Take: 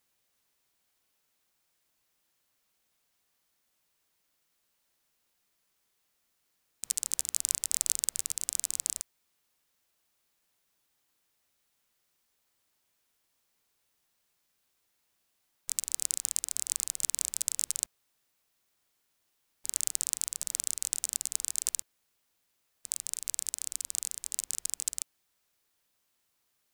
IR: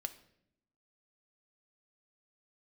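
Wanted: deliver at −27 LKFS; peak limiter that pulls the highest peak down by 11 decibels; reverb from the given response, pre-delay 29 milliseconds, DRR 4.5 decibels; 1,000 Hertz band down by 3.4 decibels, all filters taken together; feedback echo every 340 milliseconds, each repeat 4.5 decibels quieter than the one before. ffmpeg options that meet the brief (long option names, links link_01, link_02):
-filter_complex "[0:a]equalizer=frequency=1000:width_type=o:gain=-4.5,alimiter=limit=-13.5dB:level=0:latency=1,aecho=1:1:340|680|1020|1360|1700|2040|2380|2720|3060:0.596|0.357|0.214|0.129|0.0772|0.0463|0.0278|0.0167|0.01,asplit=2[link_01][link_02];[1:a]atrim=start_sample=2205,adelay=29[link_03];[link_02][link_03]afir=irnorm=-1:irlink=0,volume=-3dB[link_04];[link_01][link_04]amix=inputs=2:normalize=0,volume=8.5dB"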